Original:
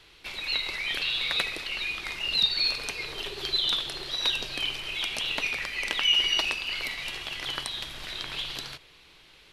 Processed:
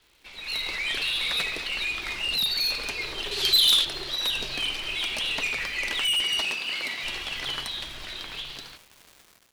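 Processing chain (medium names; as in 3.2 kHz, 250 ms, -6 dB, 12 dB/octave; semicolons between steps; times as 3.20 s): fade out at the end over 2.21 s; 6.21–7.04 s: Chebyshev high-pass 190 Hz, order 2; flange 1 Hz, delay 2.8 ms, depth 2 ms, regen -63%; low-pass 11 kHz; saturation -29.5 dBFS, distortion -10 dB; 3.31–3.85 s: treble shelf 2.6 kHz +12 dB; crackle 500 per s -47 dBFS; level rider gain up to 13.5 dB; trim -5.5 dB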